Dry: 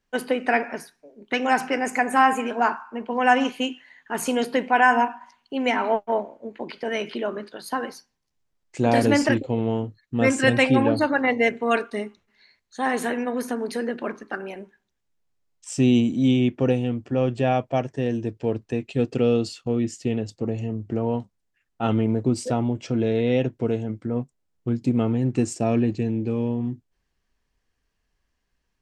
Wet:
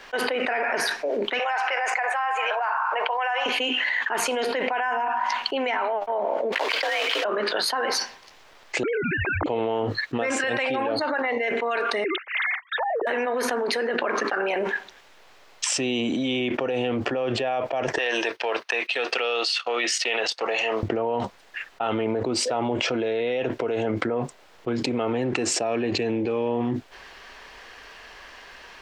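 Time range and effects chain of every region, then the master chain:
1.39–3.46 HPF 610 Hz 24 dB/oct + air absorption 54 m
6.52–7.25 block floating point 3-bit + weighting filter A + frequency shift +57 Hz
8.83–9.46 sine-wave speech + frequency shift -230 Hz
12.04–13.07 sine-wave speech + treble ducked by the level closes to 350 Hz, closed at -21 dBFS
17.98–20.83 gate -44 dBFS, range -12 dB + HPF 1000 Hz + notch 7300 Hz, Q 5.7
whole clip: three-band isolator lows -22 dB, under 430 Hz, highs -16 dB, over 4600 Hz; limiter -17.5 dBFS; fast leveller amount 100%; gain -2 dB

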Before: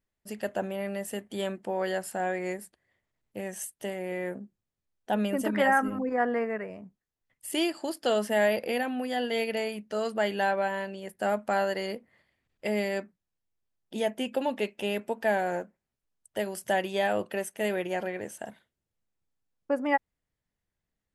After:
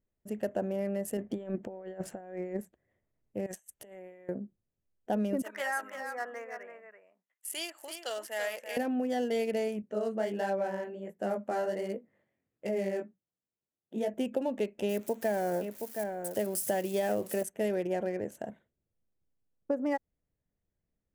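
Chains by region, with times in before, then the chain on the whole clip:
1.17–2.61 negative-ratio compressor -37 dBFS, ratio -0.5 + air absorption 76 m
3.46–4.29 bell 210 Hz -11 dB 2.8 oct + negative-ratio compressor -46 dBFS, ratio -0.5
5.42–8.77 HPF 1200 Hz + echo 0.334 s -7.5 dB
9.82–14.14 HPF 130 Hz + chorus 1.4 Hz, delay 15.5 ms, depth 7.9 ms
14.89–17.43 switching spikes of -32.5 dBFS + echo 0.72 s -9 dB
whole clip: Wiener smoothing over 9 samples; band shelf 1800 Hz -8 dB 2.6 oct; compressor, threshold -29 dBFS; gain +2.5 dB

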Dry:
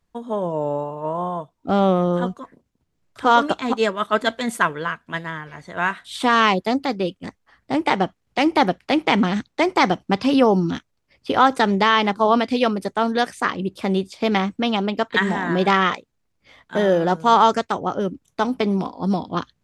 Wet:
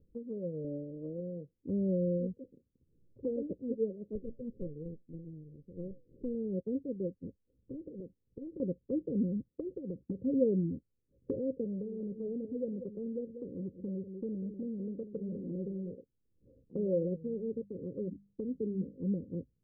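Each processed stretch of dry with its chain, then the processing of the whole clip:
0.64–1.2 low shelf 350 Hz +5 dB + comb 3.5 ms, depth 50%
4.15–6.35 minimum comb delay 0.51 ms + flange 1.3 Hz, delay 4.8 ms, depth 3.8 ms, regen +87%
7.27–8.6 compressor, threshold -26 dBFS + Doppler distortion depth 0.75 ms
9.5–10.19 HPF 46 Hz 24 dB/oct + compressor 4:1, threshold -19 dBFS
11.64–15.93 echo 0.19 s -14.5 dB + core saturation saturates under 2200 Hz
17.18–19.02 bell 760 Hz -11.5 dB 0.56 oct + notches 50/100/150/200 Hz
whole clip: Chebyshev low-pass 540 Hz, order 8; dynamic EQ 320 Hz, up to -6 dB, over -34 dBFS, Q 1.1; upward compressor, threshold -47 dBFS; gain -7.5 dB

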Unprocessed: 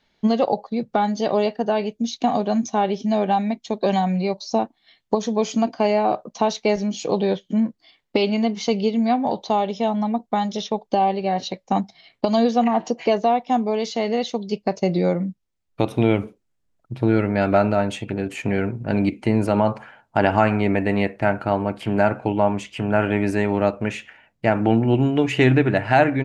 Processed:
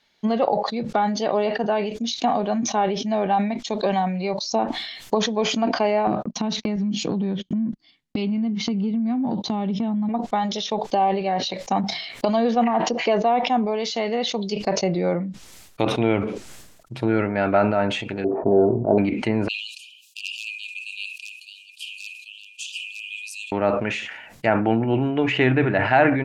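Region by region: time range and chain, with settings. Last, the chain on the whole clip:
6.07–10.09 gate -40 dBFS, range -47 dB + resonant low shelf 350 Hz +13 dB, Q 1.5 + compressor 20:1, threshold -16 dBFS
18.24–18.98 steep low-pass 1100 Hz 48 dB/oct + small resonant body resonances 390/640 Hz, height 13 dB, ringing for 25 ms
19.48–23.52 hard clip -5.5 dBFS + brick-wall FIR high-pass 2400 Hz
whole clip: treble ducked by the level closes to 2200 Hz, closed at -17 dBFS; tilt +2 dB/oct; sustainer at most 50 dB/s

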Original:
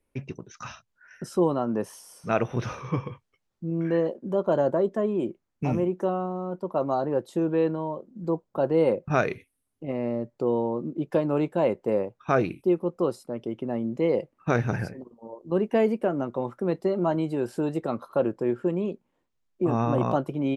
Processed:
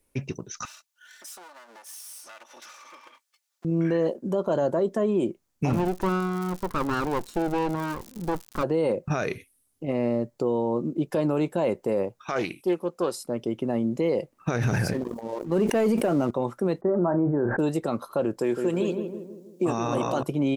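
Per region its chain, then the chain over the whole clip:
0.65–3.65 minimum comb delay 3.4 ms + HPF 970 Hz + compressor 4:1, threshold -51 dBFS
5.69–8.62 minimum comb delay 0.73 ms + LPF 2800 Hz 6 dB/oct + crackle 130/s -41 dBFS
12.21–13.24 LPF 2300 Hz 6 dB/oct + tilt +3.5 dB/oct + Doppler distortion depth 0.14 ms
14.61–16.31 sample leveller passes 1 + sustainer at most 45 dB/s
16.81–17.59 steep low-pass 1800 Hz 72 dB/oct + doubler 34 ms -13 dB + sustainer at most 53 dB/s
18.38–20.23 HPF 200 Hz 6 dB/oct + high shelf 2300 Hz +9.5 dB + darkening echo 0.161 s, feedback 52%, low-pass 1100 Hz, level -5.5 dB
whole clip: tone controls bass 0 dB, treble +10 dB; limiter -19.5 dBFS; gain +3.5 dB

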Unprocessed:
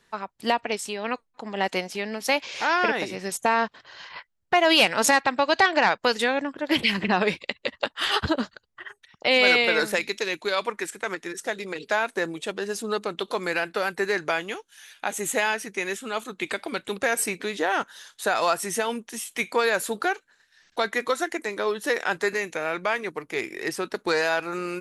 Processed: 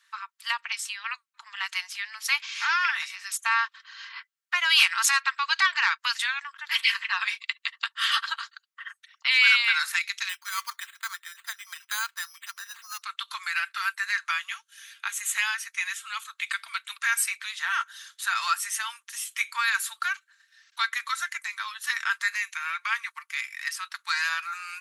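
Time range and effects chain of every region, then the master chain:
10.29–13.02 LPF 1400 Hz 6 dB/oct + careless resampling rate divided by 8×, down none, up hold
whole clip: steep high-pass 1100 Hz 48 dB/oct; comb 4.4 ms, depth 43%

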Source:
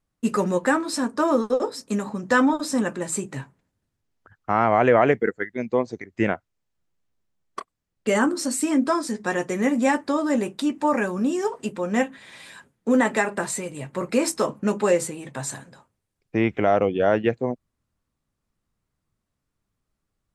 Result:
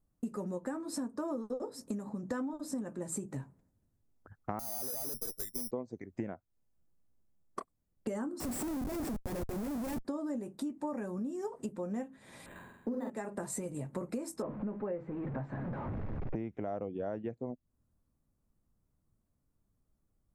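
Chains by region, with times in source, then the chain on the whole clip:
4.59–5.71 tube stage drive 33 dB, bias 0.65 + careless resampling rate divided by 8×, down filtered, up zero stuff
8.4–10.05 minimum comb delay 0.38 ms + HPF 220 Hz 6 dB/oct + Schmitt trigger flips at -33 dBFS
12.46–13.1 flutter echo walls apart 7.8 m, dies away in 1 s + decimation joined by straight lines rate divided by 8×
14.42–16.36 zero-crossing step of -29 dBFS + LPF 2300 Hz 24 dB/oct
whole clip: EQ curve 250 Hz 0 dB, 410 Hz -5 dB, 620 Hz -5 dB, 3000 Hz -19 dB, 12000 Hz -5 dB; compressor 10:1, threshold -37 dBFS; bell 150 Hz -3 dB 1.9 oct; gain +4 dB

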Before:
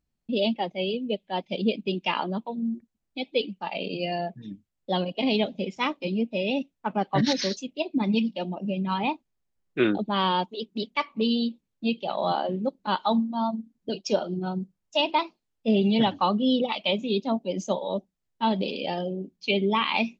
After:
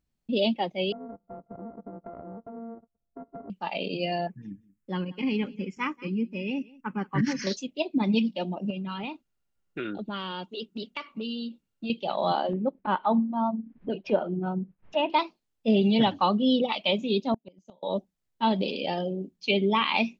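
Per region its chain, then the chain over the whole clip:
0.92–3.5 sample sorter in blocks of 64 samples + Bessel low-pass 700 Hz, order 6 + compressor 10:1, threshold -37 dBFS
4.27–7.47 fixed phaser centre 1600 Hz, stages 4 + echo 0.182 s -22.5 dB
8.7–11.9 dynamic EQ 830 Hz, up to -6 dB, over -40 dBFS, Q 1.8 + compressor 5:1, threshold -31 dBFS + small resonant body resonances 1400/2800 Hz, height 12 dB
12.53–15.1 LPF 2400 Hz 24 dB/oct + upward compressor, threshold -28 dBFS + expander -51 dBFS
17.34–17.83 tone controls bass +5 dB, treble -2 dB + flipped gate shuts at -20 dBFS, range -32 dB + Doppler distortion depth 0.57 ms
whole clip: dry

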